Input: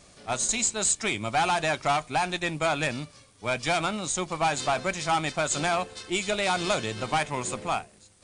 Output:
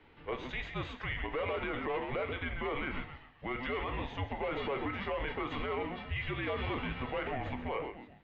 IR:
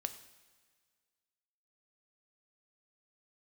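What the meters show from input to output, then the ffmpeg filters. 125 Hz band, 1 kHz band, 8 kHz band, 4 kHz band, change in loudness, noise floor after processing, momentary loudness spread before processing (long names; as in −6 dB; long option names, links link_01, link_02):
−5.0 dB, −12.0 dB, below −40 dB, −13.5 dB, −10.0 dB, −57 dBFS, 6 LU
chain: -filter_complex "[0:a]asplit=5[link_01][link_02][link_03][link_04][link_05];[link_02]adelay=132,afreqshift=-100,volume=-12.5dB[link_06];[link_03]adelay=264,afreqshift=-200,volume=-20.2dB[link_07];[link_04]adelay=396,afreqshift=-300,volume=-28dB[link_08];[link_05]adelay=528,afreqshift=-400,volume=-35.7dB[link_09];[link_01][link_06][link_07][link_08][link_09]amix=inputs=5:normalize=0[link_10];[1:a]atrim=start_sample=2205,atrim=end_sample=6174,asetrate=79380,aresample=44100[link_11];[link_10][link_11]afir=irnorm=-1:irlink=0,highpass=frequency=220:width_type=q:width=0.5412,highpass=frequency=220:width_type=q:width=1.307,lowpass=frequency=3200:width_type=q:width=0.5176,lowpass=frequency=3200:width_type=q:width=0.7071,lowpass=frequency=3200:width_type=q:width=1.932,afreqshift=-270,alimiter=level_in=7dB:limit=-24dB:level=0:latency=1:release=45,volume=-7dB,volume=4dB"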